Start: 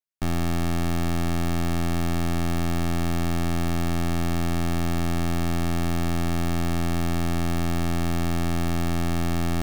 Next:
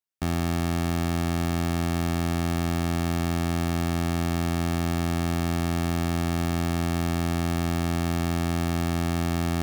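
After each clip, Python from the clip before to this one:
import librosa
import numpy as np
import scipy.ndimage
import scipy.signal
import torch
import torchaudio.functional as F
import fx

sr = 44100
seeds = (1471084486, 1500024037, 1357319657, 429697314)

y = scipy.signal.sosfilt(scipy.signal.butter(2, 44.0, 'highpass', fs=sr, output='sos'), x)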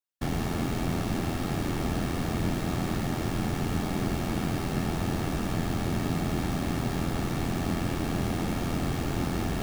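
y = fx.whisperise(x, sr, seeds[0])
y = y * 10.0 ** (-3.0 / 20.0)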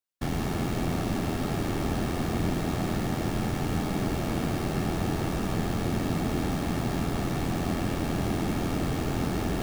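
y = fx.echo_banded(x, sr, ms=158, feedback_pct=83, hz=460.0, wet_db=-6.0)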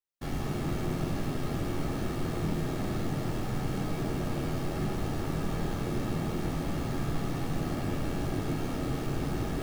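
y = fx.room_shoebox(x, sr, seeds[1], volume_m3=62.0, walls='mixed', distance_m=0.72)
y = y * 10.0 ** (-8.0 / 20.0)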